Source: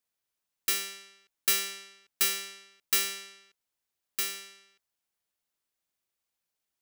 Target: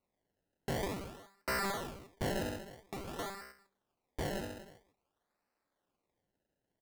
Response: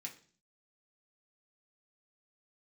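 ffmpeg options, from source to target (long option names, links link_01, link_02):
-filter_complex "[0:a]lowpass=1600,equalizer=frequency=650:width_type=o:width=1.4:gain=3.5,aecho=1:1:148:0.266,asplit=2[link_01][link_02];[1:a]atrim=start_sample=2205,lowpass=2200[link_03];[link_02][link_03]afir=irnorm=-1:irlink=0,volume=2dB[link_04];[link_01][link_04]amix=inputs=2:normalize=0,asettb=1/sr,asplit=3[link_05][link_06][link_07];[link_05]atrim=end=2.574[link_08];[link_06]atrim=start=2.57:end=3.19,asetpts=PTS-STARTPTS,afade=type=in:duration=0.004:curve=qsin,afade=type=out:start_time=0.616:duration=0.004:curve=qsin,acompressor=threshold=-50dB:ratio=4[link_09];[link_07]atrim=start=3.186[link_10];[link_08][link_09]acrossfade=duration=0.004:curve1=hsin:curve2=qsin[link_11];[link_11][link_10]acrossfade=duration=0.004:curve1=qsin:curve2=hsin,crystalizer=i=2.5:c=0,acrusher=samples=26:mix=1:aa=0.000001:lfo=1:lforange=26:lforate=0.5,asoftclip=type=tanh:threshold=-36dB,volume=5.5dB"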